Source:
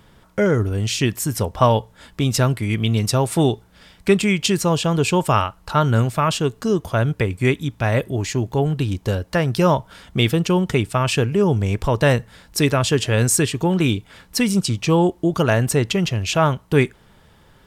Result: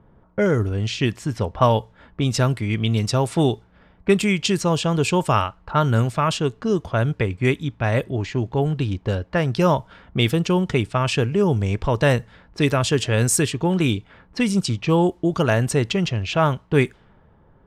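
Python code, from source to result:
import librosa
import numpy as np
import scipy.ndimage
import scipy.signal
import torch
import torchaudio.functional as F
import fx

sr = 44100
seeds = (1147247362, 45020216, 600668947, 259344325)

y = fx.env_lowpass(x, sr, base_hz=930.0, full_db=-13.0)
y = F.gain(torch.from_numpy(y), -1.5).numpy()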